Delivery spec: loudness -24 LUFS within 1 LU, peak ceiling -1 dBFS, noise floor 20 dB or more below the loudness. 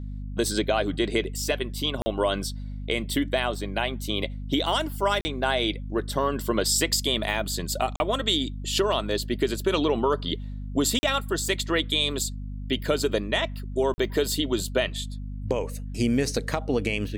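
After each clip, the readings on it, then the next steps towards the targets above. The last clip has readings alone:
dropouts 5; longest dropout 40 ms; hum 50 Hz; highest harmonic 250 Hz; hum level -32 dBFS; loudness -26.0 LUFS; peak level -10.5 dBFS; loudness target -24.0 LUFS
-> interpolate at 2.02/5.21/7.96/10.99/13.94 s, 40 ms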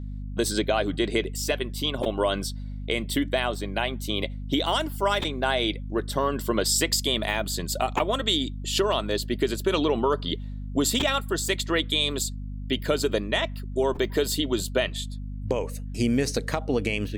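dropouts 0; hum 50 Hz; highest harmonic 250 Hz; hum level -32 dBFS
-> hum notches 50/100/150/200/250 Hz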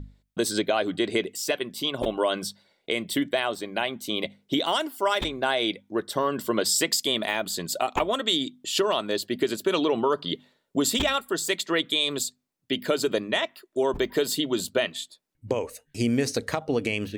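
hum not found; loudness -26.5 LUFS; peak level -9.5 dBFS; loudness target -24.0 LUFS
-> trim +2.5 dB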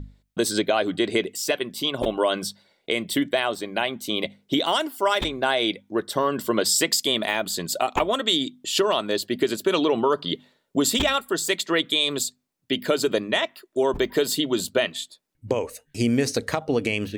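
loudness -24.0 LUFS; peak level -7.0 dBFS; noise floor -72 dBFS

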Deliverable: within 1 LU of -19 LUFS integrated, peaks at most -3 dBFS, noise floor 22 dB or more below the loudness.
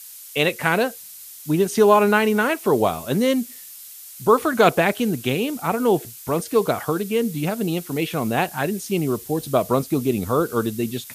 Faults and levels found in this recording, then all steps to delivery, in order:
noise floor -41 dBFS; noise floor target -43 dBFS; loudness -21.0 LUFS; peak level -2.5 dBFS; loudness target -19.0 LUFS
-> noise reduction 6 dB, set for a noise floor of -41 dBFS; trim +2 dB; peak limiter -3 dBFS

